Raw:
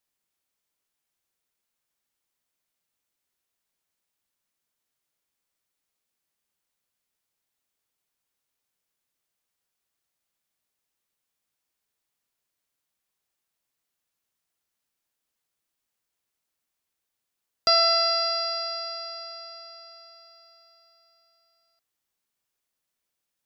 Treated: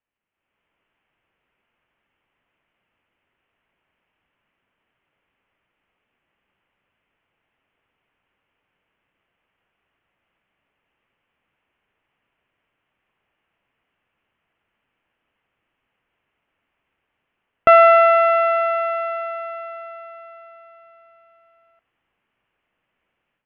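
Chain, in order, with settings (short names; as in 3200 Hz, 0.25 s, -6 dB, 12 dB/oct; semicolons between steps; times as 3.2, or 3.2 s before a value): steep low-pass 3000 Hz 72 dB/oct; AGC gain up to 14.5 dB; on a send: reverb, pre-delay 3 ms, DRR 23 dB; on the sum: gain +1 dB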